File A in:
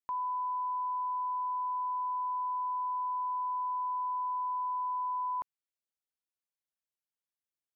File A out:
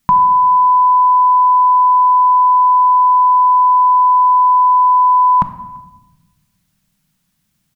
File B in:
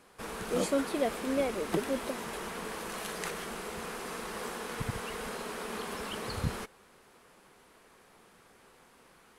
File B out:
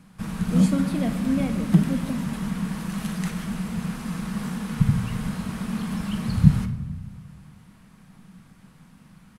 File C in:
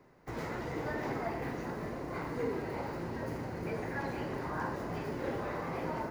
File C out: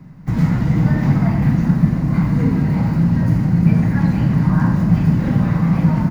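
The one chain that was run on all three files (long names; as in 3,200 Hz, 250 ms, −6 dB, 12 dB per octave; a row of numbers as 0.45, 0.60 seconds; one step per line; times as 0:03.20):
low shelf with overshoot 280 Hz +13 dB, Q 3
far-end echo of a speakerphone 340 ms, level −29 dB
rectangular room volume 610 cubic metres, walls mixed, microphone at 0.58 metres
normalise the peak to −1.5 dBFS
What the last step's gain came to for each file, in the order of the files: +26.0, +0.5, +9.5 decibels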